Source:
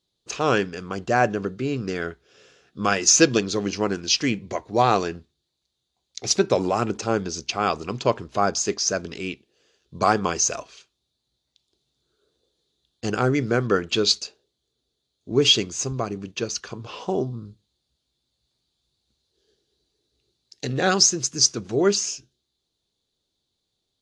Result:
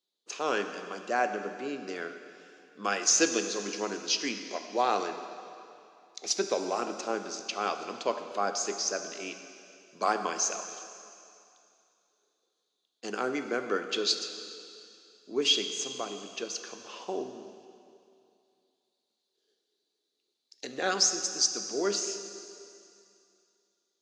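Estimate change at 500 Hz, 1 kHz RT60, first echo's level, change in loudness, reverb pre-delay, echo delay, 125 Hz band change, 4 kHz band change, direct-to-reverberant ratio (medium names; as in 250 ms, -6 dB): -8.5 dB, 2.6 s, no echo, -8.0 dB, 14 ms, no echo, -24.0 dB, -7.0 dB, 7.0 dB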